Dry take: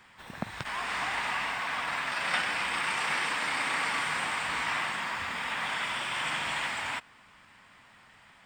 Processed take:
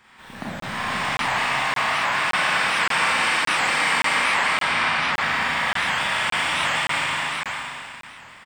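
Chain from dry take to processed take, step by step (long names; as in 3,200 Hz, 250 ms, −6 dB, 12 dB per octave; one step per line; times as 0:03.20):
0:04.07–0:05.09: low-pass filter 5,500 Hz 24 dB per octave
on a send: single-tap delay 479 ms −3 dB
on the sum: four-comb reverb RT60 2.5 s, combs from 29 ms, DRR −7.5 dB
regular buffer underruns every 0.57 s, samples 1,024, zero, from 0:00.60
wow of a warped record 78 rpm, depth 160 cents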